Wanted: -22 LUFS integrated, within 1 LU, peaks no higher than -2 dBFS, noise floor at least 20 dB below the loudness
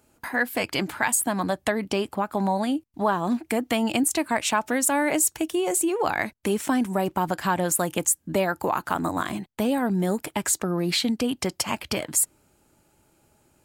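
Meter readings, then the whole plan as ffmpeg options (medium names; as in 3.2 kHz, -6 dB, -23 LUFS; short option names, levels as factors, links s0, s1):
loudness -25.0 LUFS; peak level -8.5 dBFS; loudness target -22.0 LUFS
-> -af "volume=1.41"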